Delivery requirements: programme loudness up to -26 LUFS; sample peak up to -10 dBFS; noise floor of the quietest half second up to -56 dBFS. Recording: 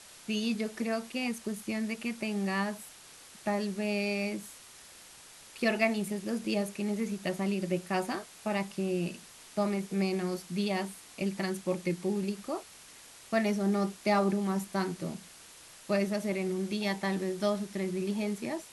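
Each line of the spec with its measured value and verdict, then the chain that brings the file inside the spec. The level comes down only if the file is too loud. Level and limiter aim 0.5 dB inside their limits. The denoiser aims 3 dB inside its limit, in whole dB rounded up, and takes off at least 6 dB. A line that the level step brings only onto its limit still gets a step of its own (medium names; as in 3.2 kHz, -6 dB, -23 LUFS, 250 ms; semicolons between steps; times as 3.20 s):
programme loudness -32.5 LUFS: pass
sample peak -13.0 dBFS: pass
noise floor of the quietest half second -53 dBFS: fail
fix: noise reduction 6 dB, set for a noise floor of -53 dBFS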